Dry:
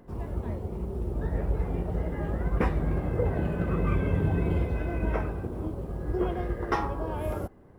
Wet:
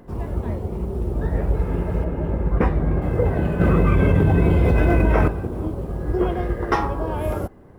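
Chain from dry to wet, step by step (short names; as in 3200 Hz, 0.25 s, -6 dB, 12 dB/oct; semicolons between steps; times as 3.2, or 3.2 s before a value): 1.63–2.49 spectral repair 680–2700 Hz before; 2.04–3.02 high shelf 2700 Hz -10 dB; 3.6–5.28 fast leveller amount 100%; gain +7 dB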